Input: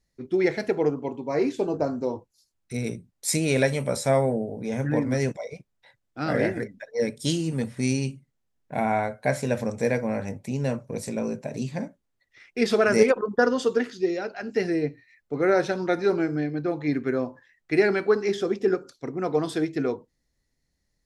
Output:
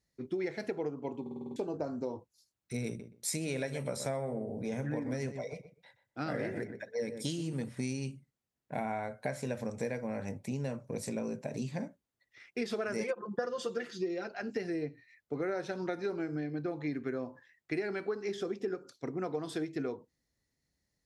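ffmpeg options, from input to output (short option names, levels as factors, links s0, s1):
-filter_complex "[0:a]asettb=1/sr,asplit=3[s0][s1][s2];[s0]atrim=end=2.874[s3];[s1]atrim=start=2.87:end=7.69,asetpts=PTS-STARTPTS,afade=t=in:d=0.004:c=qsin,afade=t=out:st=4.816:d=0.004:c=qsin,asplit=2[s4][s5];[s5]adelay=124,lowpass=f=2000:p=1,volume=0.266,asplit=2[s6][s7];[s7]adelay=124,lowpass=f=2000:p=1,volume=0.18[s8];[s4][s6][s8]amix=inputs=3:normalize=0,atrim=end_sample=212562[s9];[s2]atrim=start=7.686[s10];[s3][s9]acrossfade=d=0.004:c1=hsin:c2=qsin[s11];[s11][s10]acrossfade=d=0.004:c1=qsin:c2=hsin,asettb=1/sr,asplit=3[s12][s13][s14];[s12]atrim=end=13.004[s15];[s13]atrim=start=13:end=14.28,asetpts=PTS-STARTPTS,afade=t=in:d=0.004:c=qsin,afade=t=out:st=1.276:d=0.004:c=qsin,aecho=1:1:5.8:0.89,atrim=end_sample=56448[s16];[s14]atrim=start=14.276[s17];[s15][s16]acrossfade=d=0.004:c1=hsin:c2=qsin[s18];[s18][s17]acrossfade=d=0.004:c1=qsin:c2=hsin,asplit=8[s19][s20][s21][s22][s23][s24][s25][s26];[s19]atrim=end=1.262[s27];[s20]atrim=start=1.208:end=1.262[s28];[s21]atrim=start=1.208:end=1.262[s29];[s22]atrim=start=1.208:end=1.262[s30];[s23]atrim=start=1.208:end=1.262[s31];[s24]atrim=start=1.208:end=1.262[s32];[s25]atrim=start=1.208:end=1.262[s33];[s26]atrim=start=1.558[s34];[s27][s28]acrossfade=d=0.004:c1=hsin:c2=hsin[s35];[s35][s29]acrossfade=d=0.004:c1=hsin:c2=hsin[s36];[s36][s30]acrossfade=d=0.004:c1=hsin:c2=hsin[s37];[s37][s31]acrossfade=d=0.004:c1=hsin:c2=hsin[s38];[s38][s32]acrossfade=d=0.004:c1=hsin:c2=hsin[s39];[s39][s33]acrossfade=d=0.004:c1=hsin:c2=hsin[s40];[s40][s34]acrossfade=d=0.004:c1=hsin:c2=hsin,highpass=63,acompressor=threshold=0.0398:ratio=6,volume=0.631"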